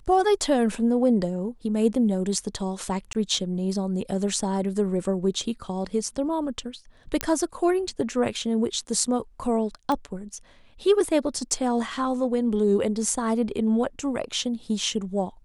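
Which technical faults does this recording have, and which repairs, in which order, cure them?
3.13–3.15 gap 18 ms
7.21 pop -7 dBFS
9.92 pop -15 dBFS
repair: de-click; interpolate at 3.13, 18 ms

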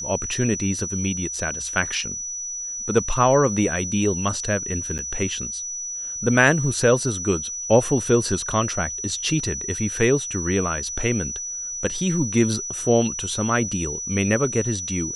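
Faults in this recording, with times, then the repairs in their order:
tone 5900 Hz -28 dBFS
4.98–4.99 gap 7.8 ms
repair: notch 5900 Hz, Q 30; interpolate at 4.98, 7.8 ms

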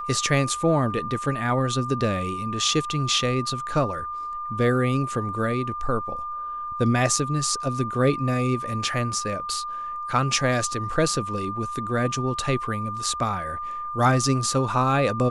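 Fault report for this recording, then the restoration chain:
tone 1200 Hz -29 dBFS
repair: notch 1200 Hz, Q 30

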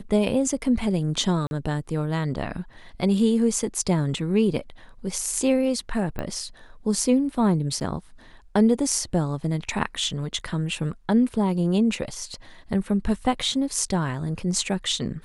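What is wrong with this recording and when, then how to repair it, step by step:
1.47–1.51 gap 41 ms
6.19 pop -18 dBFS
7.8–7.81 gap 9.3 ms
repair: de-click; interpolate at 1.47, 41 ms; interpolate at 7.8, 9.3 ms

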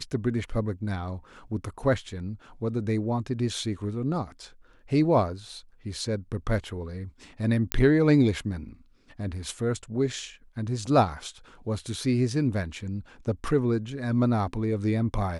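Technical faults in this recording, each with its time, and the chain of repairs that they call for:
7.72 pop -7 dBFS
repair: de-click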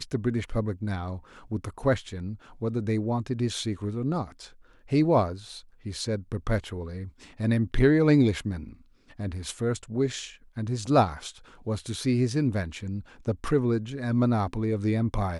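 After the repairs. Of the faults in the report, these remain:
none

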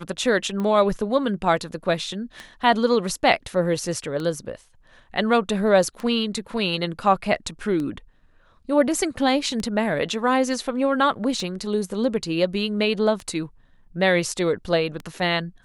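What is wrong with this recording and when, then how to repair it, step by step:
tick 33 1/3 rpm -18 dBFS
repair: de-click

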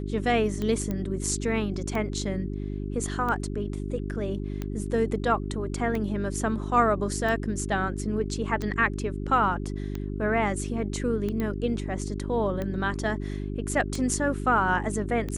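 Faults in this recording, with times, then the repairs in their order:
hum 50 Hz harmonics 8 -32 dBFS
tick 45 rpm -19 dBFS
0.91 pop -18 dBFS
11.4 pop -18 dBFS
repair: de-click; de-hum 50 Hz, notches 8

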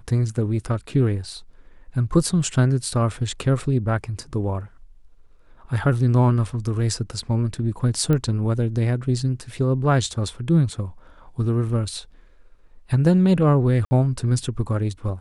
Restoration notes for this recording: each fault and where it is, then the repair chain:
8.13 pop -12 dBFS
13.85–13.91 gap 60 ms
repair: de-click; interpolate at 13.85, 60 ms

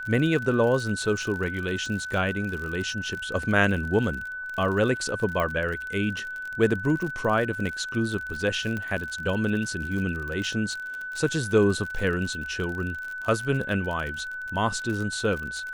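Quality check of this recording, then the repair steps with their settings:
crackle 47/s -31 dBFS
tone 1500 Hz -32 dBFS
5.4 pop -15 dBFS
8.77 pop -19 dBFS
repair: de-click; notch 1500 Hz, Q 30

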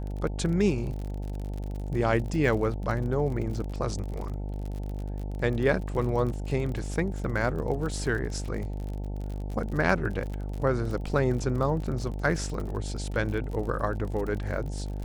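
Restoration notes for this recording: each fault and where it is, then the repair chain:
buzz 50 Hz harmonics 18 -33 dBFS
crackle 44/s -34 dBFS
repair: de-click; de-hum 50 Hz, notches 18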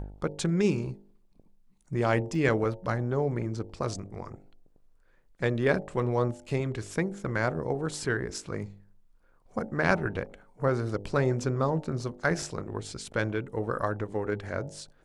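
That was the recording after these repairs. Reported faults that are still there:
none

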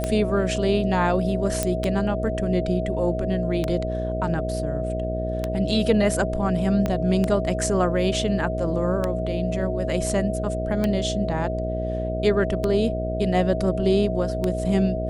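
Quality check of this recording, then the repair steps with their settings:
buzz 60 Hz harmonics 12 -28 dBFS
tick 33 1/3 rpm -11 dBFS
tone 640 Hz -28 dBFS
1.63 pop -8 dBFS
6.86 pop -12 dBFS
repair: de-click; de-hum 60 Hz, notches 12; notch 640 Hz, Q 30

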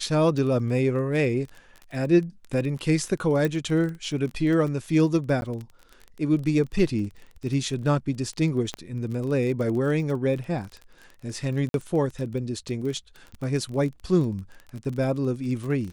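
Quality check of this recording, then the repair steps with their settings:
crackle 24/s -32 dBFS
3.45 pop
5.41–5.42 gap 11 ms
8.74 pop -17 dBFS
11.69–11.74 gap 52 ms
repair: de-click; interpolate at 5.41, 11 ms; interpolate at 11.69, 52 ms

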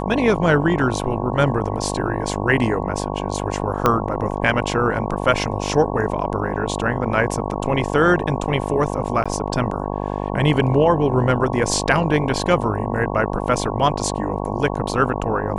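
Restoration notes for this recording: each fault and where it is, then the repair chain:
buzz 50 Hz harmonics 22 -25 dBFS
3.86 pop -3 dBFS
9.24–9.26 gap 16 ms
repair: de-click; de-hum 50 Hz, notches 22; interpolate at 9.24, 16 ms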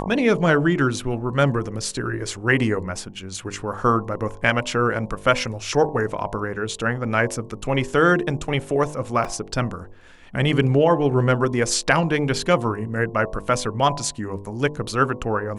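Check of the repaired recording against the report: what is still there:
3.86 pop

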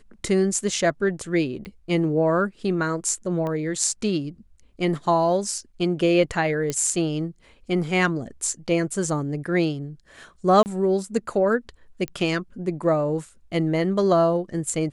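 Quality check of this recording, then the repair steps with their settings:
1.65 pop -25 dBFS
3.47 pop -19 dBFS
6.7 pop -12 dBFS
10.63–10.66 gap 29 ms
12.08 pop -17 dBFS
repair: de-click; interpolate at 10.63, 29 ms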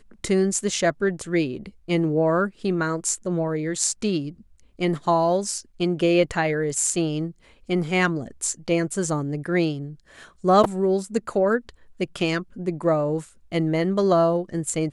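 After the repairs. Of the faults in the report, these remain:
3.47 pop

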